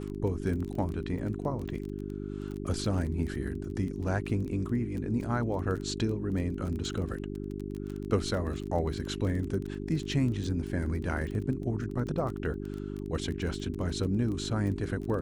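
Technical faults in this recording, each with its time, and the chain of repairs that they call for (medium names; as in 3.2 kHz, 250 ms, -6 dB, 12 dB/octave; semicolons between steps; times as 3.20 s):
crackle 21 per s -35 dBFS
hum 50 Hz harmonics 8 -37 dBFS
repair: de-click; de-hum 50 Hz, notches 8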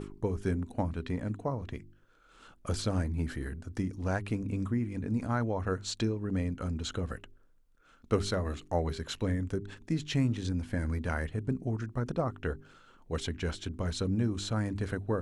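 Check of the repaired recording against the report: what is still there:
nothing left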